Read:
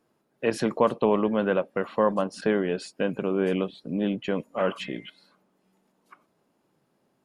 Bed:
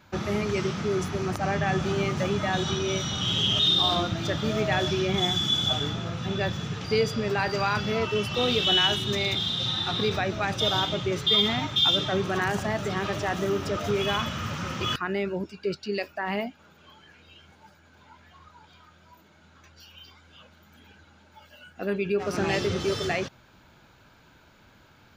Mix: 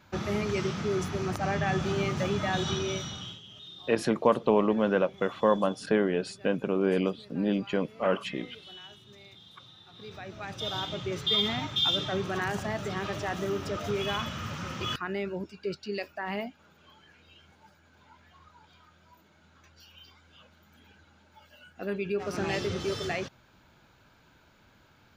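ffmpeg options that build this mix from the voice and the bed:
ffmpeg -i stem1.wav -i stem2.wav -filter_complex "[0:a]adelay=3450,volume=-1dB[link_01];[1:a]volume=18.5dB,afade=type=out:start_time=2.77:duration=0.63:silence=0.0707946,afade=type=in:start_time=9.92:duration=1.39:silence=0.0891251[link_02];[link_01][link_02]amix=inputs=2:normalize=0" out.wav

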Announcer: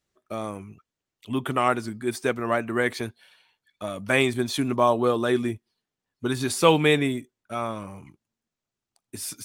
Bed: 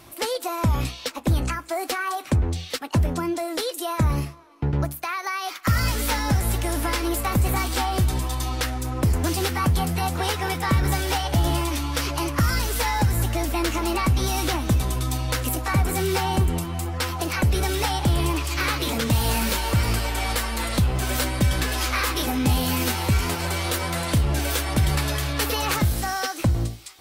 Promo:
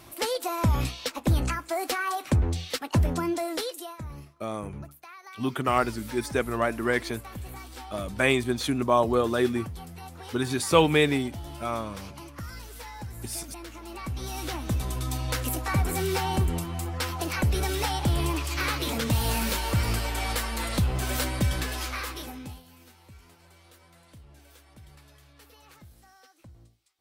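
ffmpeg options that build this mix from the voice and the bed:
ffmpeg -i stem1.wav -i stem2.wav -filter_complex "[0:a]adelay=4100,volume=-1.5dB[link_01];[1:a]volume=12dB,afade=type=out:start_time=3.48:duration=0.5:silence=0.158489,afade=type=in:start_time=13.84:duration=1.45:silence=0.199526,afade=type=out:start_time=21.35:duration=1.28:silence=0.0501187[link_02];[link_01][link_02]amix=inputs=2:normalize=0" out.wav

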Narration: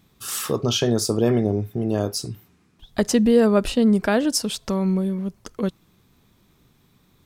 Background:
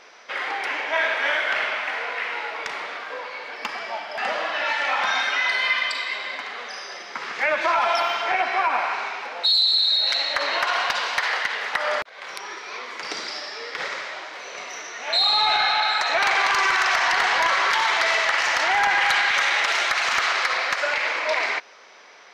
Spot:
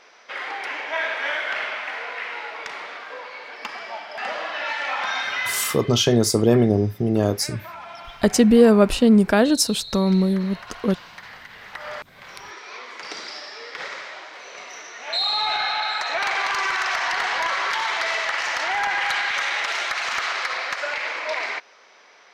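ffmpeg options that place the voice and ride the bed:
ffmpeg -i stem1.wav -i stem2.wav -filter_complex "[0:a]adelay=5250,volume=3dB[link_01];[1:a]volume=11dB,afade=type=out:start_time=5.45:duration=0.32:silence=0.188365,afade=type=in:start_time=11.47:duration=1.16:silence=0.199526[link_02];[link_01][link_02]amix=inputs=2:normalize=0" out.wav

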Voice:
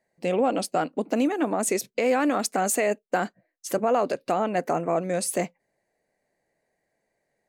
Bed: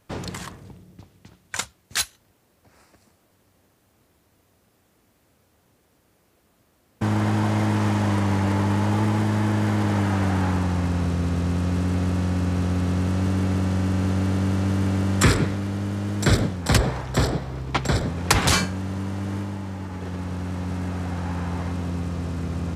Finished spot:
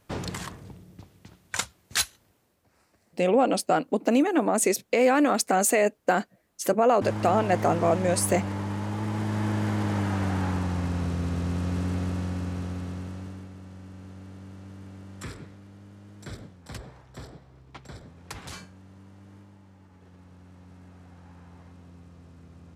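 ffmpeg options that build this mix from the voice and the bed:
ffmpeg -i stem1.wav -i stem2.wav -filter_complex "[0:a]adelay=2950,volume=2dB[link_01];[1:a]volume=3.5dB,afade=type=out:start_time=2.12:duration=0.53:silence=0.375837,afade=type=in:start_time=8.98:duration=0.49:silence=0.595662,afade=type=out:start_time=11.86:duration=1.65:silence=0.149624[link_02];[link_01][link_02]amix=inputs=2:normalize=0" out.wav

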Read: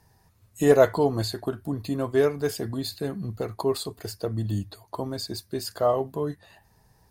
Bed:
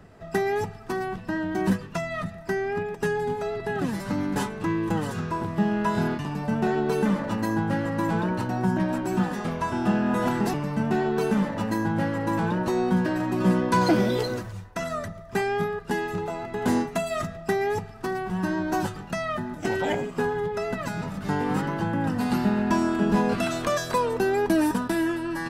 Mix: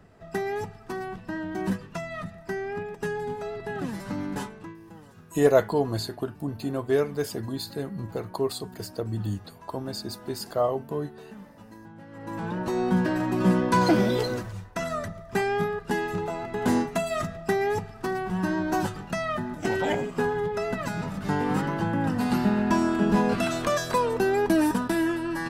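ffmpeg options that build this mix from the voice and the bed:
ffmpeg -i stem1.wav -i stem2.wav -filter_complex "[0:a]adelay=4750,volume=-2dB[link_01];[1:a]volume=16.5dB,afade=type=out:start_time=4.32:duration=0.44:silence=0.149624,afade=type=in:start_time=12.07:duration=0.92:silence=0.0891251[link_02];[link_01][link_02]amix=inputs=2:normalize=0" out.wav

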